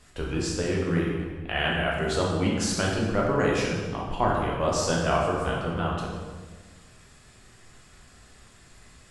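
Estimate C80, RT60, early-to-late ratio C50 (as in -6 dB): 3.0 dB, 1.4 s, 0.5 dB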